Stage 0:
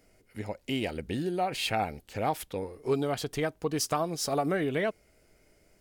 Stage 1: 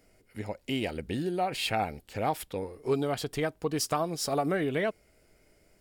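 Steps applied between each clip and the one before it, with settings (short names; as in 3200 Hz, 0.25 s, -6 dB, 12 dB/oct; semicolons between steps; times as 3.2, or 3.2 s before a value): notch 6200 Hz, Q 17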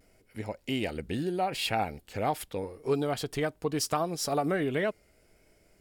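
vibrato 0.78 Hz 40 cents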